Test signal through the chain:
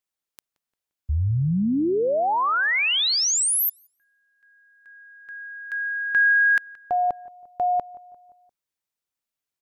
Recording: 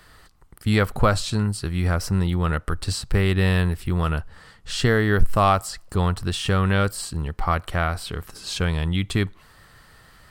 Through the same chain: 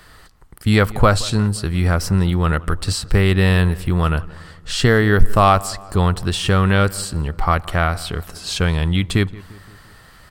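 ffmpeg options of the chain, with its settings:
-filter_complex "[0:a]asplit=2[s0][s1];[s1]adelay=174,lowpass=f=2200:p=1,volume=0.1,asplit=2[s2][s3];[s3]adelay=174,lowpass=f=2200:p=1,volume=0.55,asplit=2[s4][s5];[s5]adelay=174,lowpass=f=2200:p=1,volume=0.55,asplit=2[s6][s7];[s7]adelay=174,lowpass=f=2200:p=1,volume=0.55[s8];[s0][s2][s4][s6][s8]amix=inputs=5:normalize=0,volume=1.78"

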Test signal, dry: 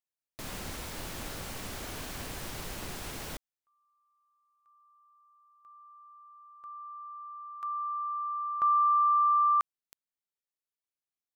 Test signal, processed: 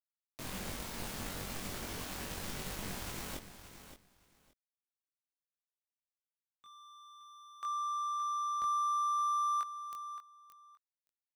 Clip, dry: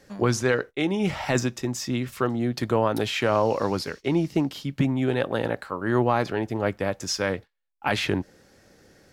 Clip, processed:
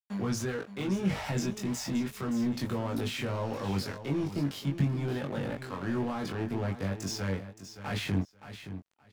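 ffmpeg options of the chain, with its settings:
-filter_complex "[0:a]equalizer=f=210:w=3.2:g=5.5,acrossover=split=140[s0][s1];[s1]acompressor=threshold=0.0251:ratio=5:attack=0.38:release=26:knee=2.83:detection=peak[s2];[s0][s2]amix=inputs=2:normalize=0,aeval=exprs='sgn(val(0))*max(abs(val(0))-0.00631,0)':c=same,asplit=2[s3][s4];[s4]adelay=21,volume=0.75[s5];[s3][s5]amix=inputs=2:normalize=0,aecho=1:1:571|1142:0.266|0.0452"

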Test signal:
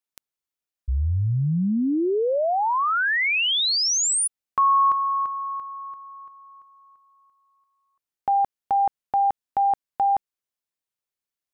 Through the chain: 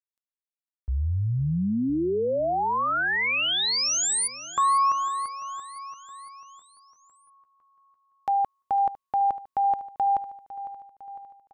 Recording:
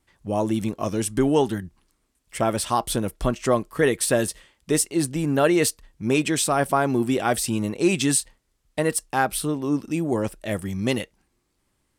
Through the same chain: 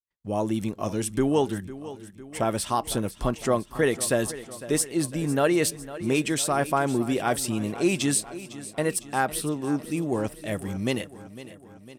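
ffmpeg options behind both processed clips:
-filter_complex "[0:a]agate=range=0.0126:threshold=0.00178:ratio=16:release=418:detection=peak,asplit=2[s0][s1];[s1]aecho=0:1:504|1008|1512|2016|2520|3024:0.168|0.0974|0.0565|0.0328|0.019|0.011[s2];[s0][s2]amix=inputs=2:normalize=0,volume=0.708"

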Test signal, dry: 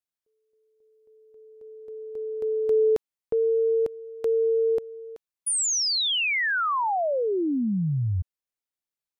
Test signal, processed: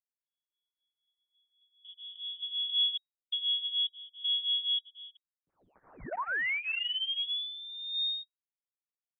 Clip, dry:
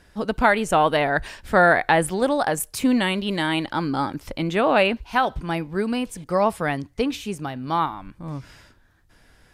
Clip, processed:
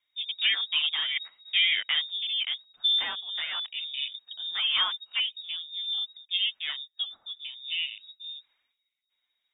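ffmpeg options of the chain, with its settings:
-af "flanger=delay=2.8:depth=6.6:regen=4:speed=0.82:shape=triangular,afwtdn=0.0251,lowpass=f=3200:t=q:w=0.5098,lowpass=f=3200:t=q:w=0.6013,lowpass=f=3200:t=q:w=0.9,lowpass=f=3200:t=q:w=2.563,afreqshift=-3800,volume=0.531"

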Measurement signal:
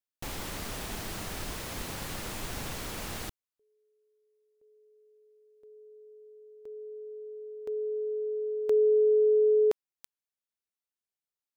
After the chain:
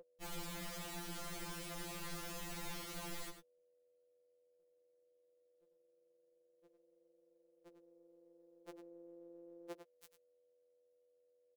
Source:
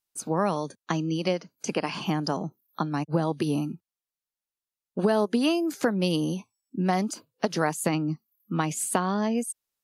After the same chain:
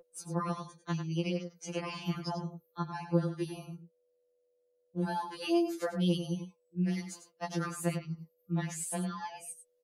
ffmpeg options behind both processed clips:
-filter_complex "[0:a]asplit=2[s0][s1];[s1]adelay=99.13,volume=0.355,highshelf=f=4000:g=-2.23[s2];[s0][s2]amix=inputs=2:normalize=0,aeval=exprs='val(0)+0.0112*sin(2*PI*490*n/s)':c=same,afftfilt=real='re*2.83*eq(mod(b,8),0)':imag='im*2.83*eq(mod(b,8),0)':win_size=2048:overlap=0.75,volume=0.473"

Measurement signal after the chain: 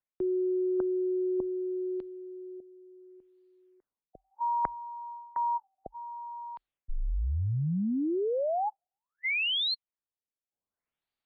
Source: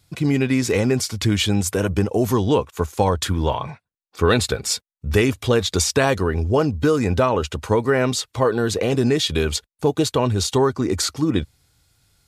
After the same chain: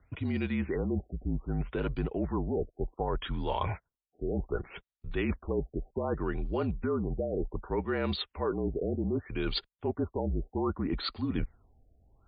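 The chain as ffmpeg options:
-af "areverse,acompressor=threshold=0.0355:ratio=12,areverse,afreqshift=-45,afftfilt=real='re*lt(b*sr/1024,730*pow(4900/730,0.5+0.5*sin(2*PI*0.65*pts/sr)))':imag='im*lt(b*sr/1024,730*pow(4900/730,0.5+0.5*sin(2*PI*0.65*pts/sr)))':win_size=1024:overlap=0.75,volume=1.19"

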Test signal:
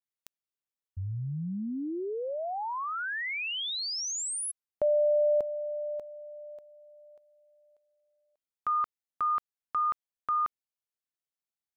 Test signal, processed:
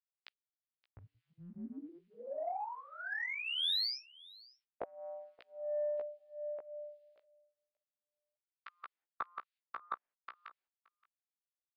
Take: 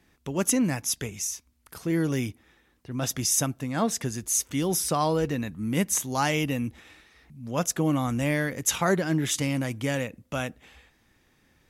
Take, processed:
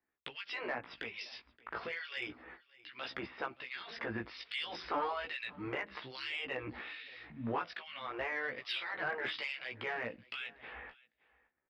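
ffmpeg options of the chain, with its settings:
-filter_complex "[0:a]aemphasis=mode=reproduction:type=50fm,afftfilt=real='re*lt(hypot(re,im),0.2)':imag='im*lt(hypot(re,im),0.2)':win_size=1024:overlap=0.75,agate=range=0.0282:threshold=0.00126:ratio=16:release=165:detection=rms,bass=f=250:g=-15,treble=f=4000:g=-10,acrossover=split=1300[s0][s1];[s1]acontrast=42[s2];[s0][s2]amix=inputs=2:normalize=0,alimiter=limit=0.0668:level=0:latency=1:release=422,acompressor=threshold=0.00562:ratio=2:attack=6.8:release=360:knee=6:detection=peak,aresample=11025,volume=33.5,asoftclip=hard,volume=0.0299,aresample=44100,flanger=delay=15:depth=3.1:speed=0.33,acrossover=split=2100[s3][s4];[s3]aeval=exprs='val(0)*(1-1/2+1/2*cos(2*PI*1.2*n/s))':c=same[s5];[s4]aeval=exprs='val(0)*(1-1/2-1/2*cos(2*PI*1.2*n/s))':c=same[s6];[s5][s6]amix=inputs=2:normalize=0,asoftclip=type=tanh:threshold=0.0126,aecho=1:1:573:0.0708,volume=5.01"

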